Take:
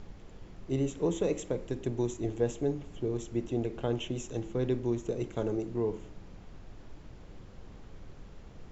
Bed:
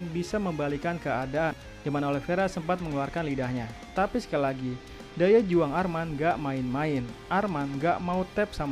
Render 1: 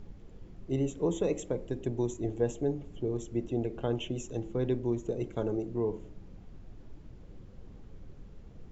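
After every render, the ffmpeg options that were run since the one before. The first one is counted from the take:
-af "afftdn=nr=8:nf=-50"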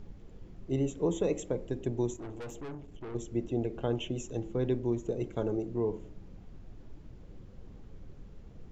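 -filter_complex "[0:a]asettb=1/sr,asplit=3[a][b][c];[a]atrim=end=2.164[d];[b]atrim=start=2.16:end=3.15,asetpts=PTS-STARTPTS,afade=t=in:d=0.004:c=qsin,afade=t=out:st=0.986:d=0.004:c=qsin,aeval=exprs='(tanh(89.1*val(0)+0.4)-tanh(0.4))/89.1':c=same[e];[c]atrim=start=3.146[f];[d][e]acrossfade=d=0.004:c1=hsin:c2=qsin[g];[g][f]acrossfade=d=0.004:c1=qsin:c2=hsin"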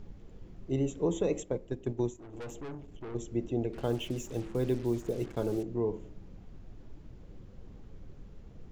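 -filter_complex "[0:a]asplit=3[a][b][c];[a]afade=t=out:st=1.42:d=0.02[d];[b]agate=range=-7dB:threshold=-34dB:ratio=16:release=100:detection=peak,afade=t=in:st=1.42:d=0.02,afade=t=out:st=2.32:d=0.02[e];[c]afade=t=in:st=2.32:d=0.02[f];[d][e][f]amix=inputs=3:normalize=0,asettb=1/sr,asplit=3[g][h][i];[g]atrim=end=3.734[j];[h]atrim=start=3.73:end=5.63,asetpts=PTS-STARTPTS,afade=t=in:d=0.004:c=qsin,afade=t=out:st=1.896:d=0.004:c=qsin,acrusher=bits=7:mix=0:aa=0.5[k];[i]atrim=start=5.626[l];[j][k]acrossfade=d=0.004:c1=hsin:c2=qsin[m];[m][l]acrossfade=d=0.004:c1=qsin:c2=hsin"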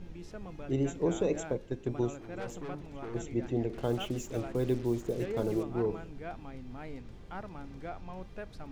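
-filter_complex "[1:a]volume=-16.5dB[a];[0:a][a]amix=inputs=2:normalize=0"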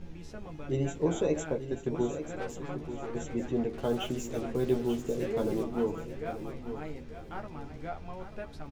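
-filter_complex "[0:a]asplit=2[a][b];[b]adelay=13,volume=-3.5dB[c];[a][c]amix=inputs=2:normalize=0,aecho=1:1:888|1776|2664:0.299|0.0866|0.0251"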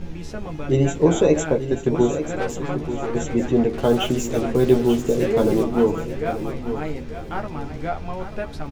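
-af "volume=12dB"

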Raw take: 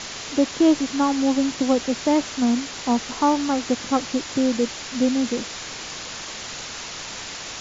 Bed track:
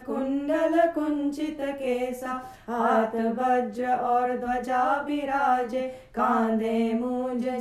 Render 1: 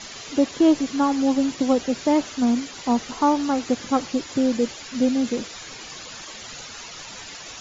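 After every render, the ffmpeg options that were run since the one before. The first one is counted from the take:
-af "afftdn=nr=11:nf=-35"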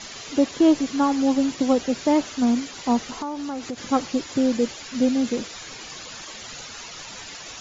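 -filter_complex "[0:a]asettb=1/sr,asplit=3[a][b][c];[a]atrim=end=3.064[d];[b]atrim=start=3.06:end=3.78,asetpts=PTS-STARTPTS,afade=t=in:d=0.004:c=qsin,afade=t=out:st=0.716:d=0.004:c=qsin,acompressor=threshold=-28dB:ratio=4:attack=3.2:release=140:knee=1:detection=peak[e];[c]atrim=start=3.776[f];[d][e]acrossfade=d=0.004:c1=hsin:c2=qsin[g];[g][f]acrossfade=d=0.004:c1=qsin:c2=hsin"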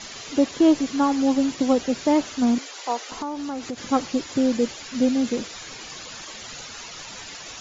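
-filter_complex "[0:a]asettb=1/sr,asplit=3[a][b][c];[a]atrim=end=2.584[d];[b]atrim=start=2.58:end=3.12,asetpts=PTS-STARTPTS,afade=t=in:d=0.004:c=qsin,afade=t=out:st=0.536:d=0.004:c=qsin,highpass=f=420:w=0.5412,highpass=f=420:w=1.3066[e];[c]atrim=start=3.116[f];[d][e]acrossfade=d=0.004:c1=hsin:c2=qsin[g];[g][f]acrossfade=d=0.004:c1=qsin:c2=hsin"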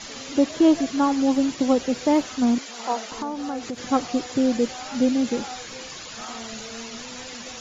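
-filter_complex "[1:a]volume=-15dB[a];[0:a][a]amix=inputs=2:normalize=0"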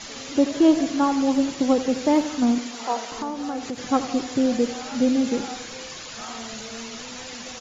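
-af "aecho=1:1:83|166|249|332|415|498:0.224|0.13|0.0753|0.0437|0.0253|0.0147"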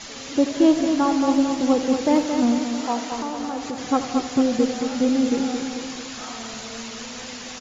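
-af "aecho=1:1:223|446|669|892|1115|1338|1561:0.473|0.26|0.143|0.0787|0.0433|0.0238|0.0131"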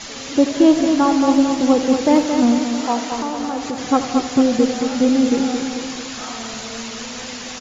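-af "volume=4.5dB,alimiter=limit=-3dB:level=0:latency=1"

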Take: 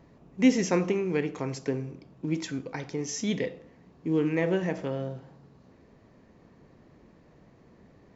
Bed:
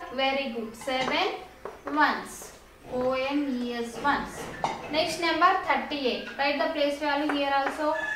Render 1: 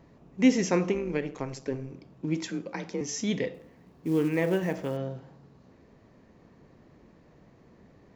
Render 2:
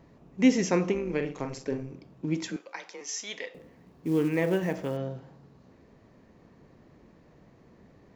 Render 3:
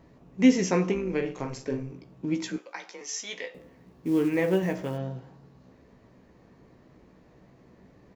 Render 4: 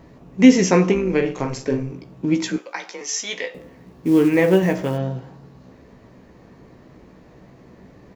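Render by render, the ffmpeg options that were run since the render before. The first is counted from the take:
-filter_complex "[0:a]asplit=3[a][b][c];[a]afade=t=out:st=0.93:d=0.02[d];[b]tremolo=f=140:d=0.667,afade=t=in:st=0.93:d=0.02,afade=t=out:st=1.9:d=0.02[e];[c]afade=t=in:st=1.9:d=0.02[f];[d][e][f]amix=inputs=3:normalize=0,asettb=1/sr,asplit=3[g][h][i];[g]atrim=end=2.494[j];[h]atrim=start=2.49:end=3.01,asetpts=PTS-STARTPTS,afade=t=in:d=0.004:c=qsin,afade=t=out:st=0.516:d=0.004:c=qsin,afreqshift=35[k];[i]atrim=start=3.006[l];[j][k]acrossfade=d=0.004:c1=hsin:c2=qsin[m];[m][l]acrossfade=d=0.004:c1=qsin:c2=hsin,asettb=1/sr,asplit=3[n][o][p];[n]atrim=end=3.544[q];[o]atrim=start=3.54:end=4.97,asetpts=PTS-STARTPTS,afade=t=in:d=0.004:c=qsin,afade=t=out:st=1.426:d=0.004:c=qsin,acrusher=bits=7:mode=log:mix=0:aa=0.000001[r];[p]atrim=start=4.966[s];[q][r]acrossfade=d=0.004:c1=hsin:c2=qsin[t];[t][s]acrossfade=d=0.004:c1=qsin:c2=hsin"
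-filter_complex "[0:a]asettb=1/sr,asplit=3[a][b][c];[a]atrim=end=1.064[d];[b]atrim=start=1.06:end=1.83,asetpts=PTS-STARTPTS,afade=t=in:d=0.004:c=qsin,afade=t=out:st=0.766:d=0.004:c=qsin,asplit=2[e][f];[f]adelay=42,volume=-7dB[g];[e][g]amix=inputs=2:normalize=0,atrim=end_sample=33957[h];[c]atrim=start=1.826[i];[d][h]acrossfade=d=0.004:c1=hsin:c2=qsin[j];[j][i]acrossfade=d=0.004:c1=qsin:c2=hsin,asettb=1/sr,asplit=3[k][l][m];[k]atrim=end=2.564[n];[l]atrim=start=2.56:end=3.55,asetpts=PTS-STARTPTS,afade=t=in:d=0.004:c=qsin,afade=t=out:st=0.986:d=0.004:c=qsin,highpass=810[o];[m]atrim=start=3.546[p];[n][o]acrossfade=d=0.004:c1=hsin:c2=qsin[q];[q][p]acrossfade=d=0.004:c1=qsin:c2=hsin"
-filter_complex "[0:a]asplit=2[a][b];[b]adelay=16,volume=-7dB[c];[a][c]amix=inputs=2:normalize=0"
-af "volume=9dB,alimiter=limit=-1dB:level=0:latency=1"

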